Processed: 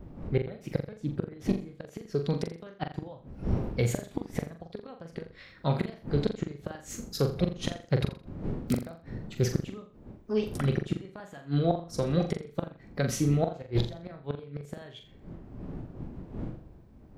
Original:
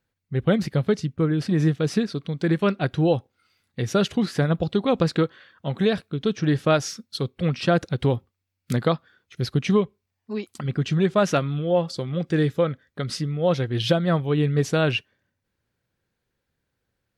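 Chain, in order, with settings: wind noise 180 Hz -39 dBFS; dynamic EQ 4200 Hz, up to -6 dB, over -46 dBFS, Q 1.4; formant shift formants +3 st; flipped gate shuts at -14 dBFS, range -26 dB; on a send: flutter echo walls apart 7.2 m, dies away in 0.38 s

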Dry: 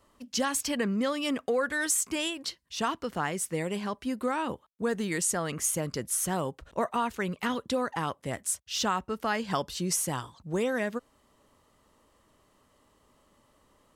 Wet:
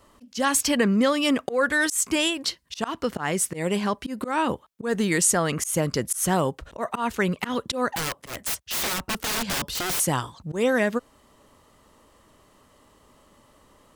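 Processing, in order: 7.96–10 wrapped overs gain 29.5 dB; auto swell 0.136 s; gain +8 dB

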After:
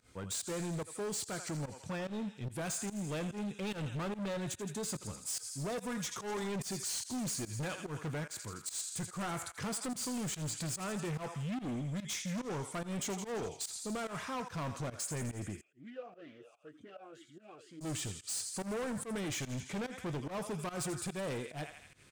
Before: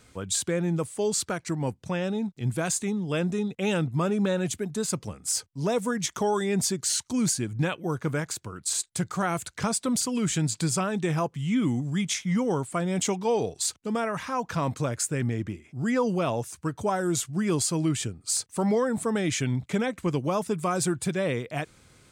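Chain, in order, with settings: doubler 20 ms -14 dB; thinning echo 83 ms, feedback 73%, high-pass 1000 Hz, level -9.5 dB; overloaded stage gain 28.5 dB; pump 145 bpm, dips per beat 1, -19 dB, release 0.114 s; 15.61–17.81 vowel sweep a-i 2.1 Hz; gain -6.5 dB

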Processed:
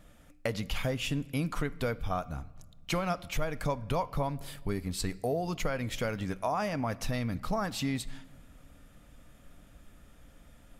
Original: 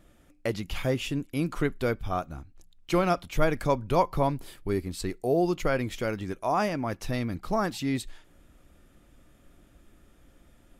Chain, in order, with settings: bell 350 Hz -12.5 dB 0.3 oct; compressor 6:1, threshold -30 dBFS, peak gain reduction 13 dB; on a send: reverb RT60 1.5 s, pre-delay 6 ms, DRR 17.5 dB; on the sum: gain +2.5 dB

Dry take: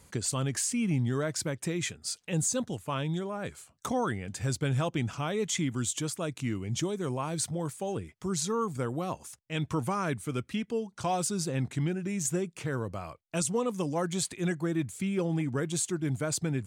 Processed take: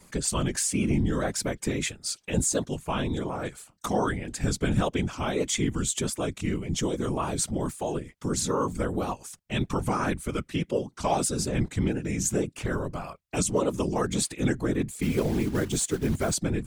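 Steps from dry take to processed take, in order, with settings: vibrato 1.7 Hz 51 cents; 15.02–16.34 short-mantissa float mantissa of 2-bit; whisperiser; gain +3.5 dB

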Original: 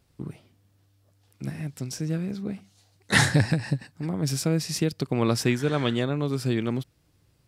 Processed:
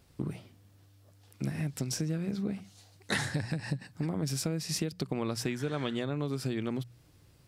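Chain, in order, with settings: notches 60/120/180 Hz; compressor 10:1, threshold -33 dBFS, peak gain reduction 18.5 dB; gain +4 dB

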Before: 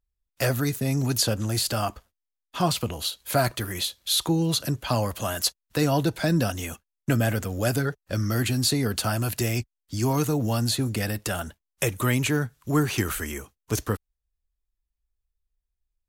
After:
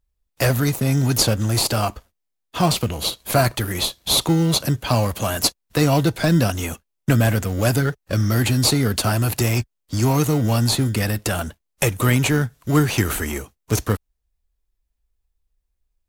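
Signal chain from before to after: dynamic EQ 350 Hz, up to -3 dB, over -32 dBFS, Q 0.82; in parallel at -9 dB: sample-and-hold 26×; on the sum: gain +5 dB

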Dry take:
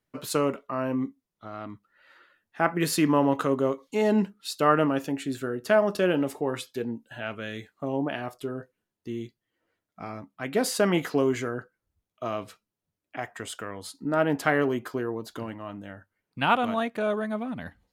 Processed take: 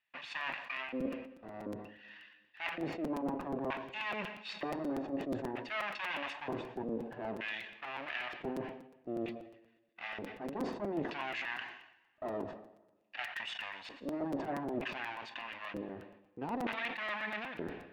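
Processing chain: minimum comb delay 1.1 ms; wow and flutter 16 cents; LFO band-pass square 0.54 Hz 380–2500 Hz; reverse; compressor 10:1, threshold -44 dBFS, peak gain reduction 16.5 dB; reverse; air absorption 150 m; on a send at -16.5 dB: reverb RT60 1.4 s, pre-delay 93 ms; on the sum: crackling interface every 0.12 s, samples 256, repeat, from 0.4; sustainer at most 72 dB/s; gain +10.5 dB

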